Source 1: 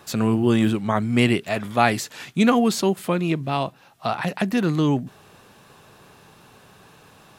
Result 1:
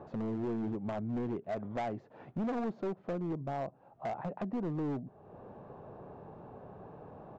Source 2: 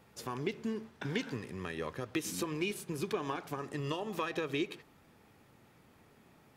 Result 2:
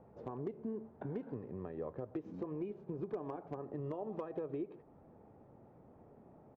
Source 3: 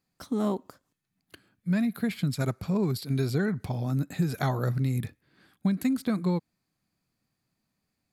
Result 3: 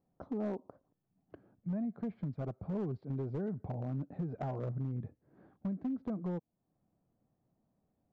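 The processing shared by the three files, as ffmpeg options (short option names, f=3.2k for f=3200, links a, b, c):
-af "acompressor=threshold=-47dB:ratio=2,lowpass=f=670:t=q:w=1.6,aresample=16000,asoftclip=type=hard:threshold=-33dB,aresample=44100,volume=2dB"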